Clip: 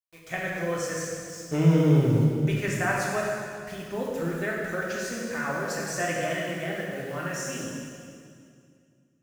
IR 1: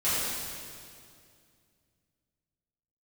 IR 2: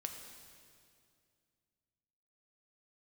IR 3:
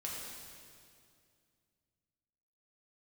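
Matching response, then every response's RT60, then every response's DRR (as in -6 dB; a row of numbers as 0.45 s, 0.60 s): 3; 2.3 s, 2.3 s, 2.3 s; -13.5 dB, 3.5 dB, -4.5 dB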